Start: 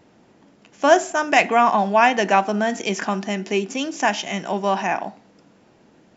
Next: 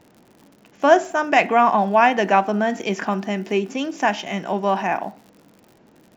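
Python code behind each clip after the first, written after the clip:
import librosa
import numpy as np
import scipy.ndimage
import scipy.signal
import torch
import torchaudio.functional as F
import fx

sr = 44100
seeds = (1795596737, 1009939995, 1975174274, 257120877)

y = fx.lowpass(x, sr, hz=2500.0, slope=6)
y = fx.dmg_crackle(y, sr, seeds[0], per_s=95.0, level_db=-40.0)
y = F.gain(torch.from_numpy(y), 1.0).numpy()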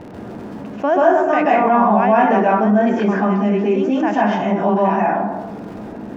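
y = fx.lowpass(x, sr, hz=1000.0, slope=6)
y = fx.rev_plate(y, sr, seeds[1], rt60_s=0.65, hf_ratio=0.45, predelay_ms=120, drr_db=-7.0)
y = fx.env_flatten(y, sr, amount_pct=50)
y = F.gain(torch.from_numpy(y), -7.5).numpy()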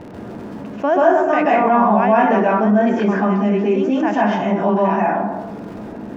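y = fx.notch(x, sr, hz=770.0, q=24.0)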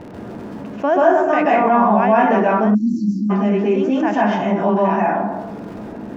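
y = fx.spec_erase(x, sr, start_s=2.74, length_s=0.56, low_hz=360.0, high_hz=3900.0)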